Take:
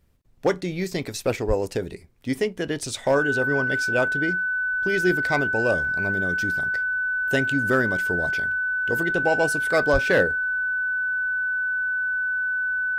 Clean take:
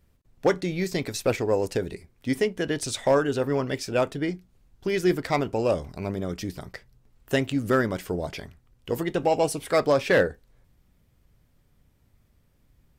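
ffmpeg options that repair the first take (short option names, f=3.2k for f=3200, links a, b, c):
-filter_complex "[0:a]bandreject=f=1.5k:w=30,asplit=3[a][b][c];[a]afade=t=out:st=1.47:d=0.02[d];[b]highpass=f=140:w=0.5412,highpass=f=140:w=1.3066,afade=t=in:st=1.47:d=0.02,afade=t=out:st=1.59:d=0.02[e];[c]afade=t=in:st=1.59:d=0.02[f];[d][e][f]amix=inputs=3:normalize=0,asplit=3[g][h][i];[g]afade=t=out:st=9.92:d=0.02[j];[h]highpass=f=140:w=0.5412,highpass=f=140:w=1.3066,afade=t=in:st=9.92:d=0.02,afade=t=out:st=10.04:d=0.02[k];[i]afade=t=in:st=10.04:d=0.02[l];[j][k][l]amix=inputs=3:normalize=0"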